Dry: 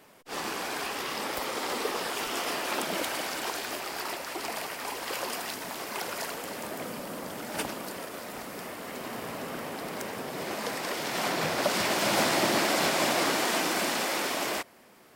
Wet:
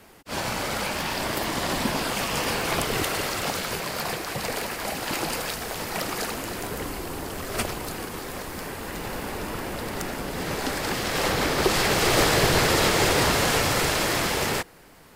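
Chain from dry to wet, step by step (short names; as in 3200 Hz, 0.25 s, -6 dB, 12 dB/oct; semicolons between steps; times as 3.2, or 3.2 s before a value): HPF 180 Hz; frequency shift -210 Hz; gain +5.5 dB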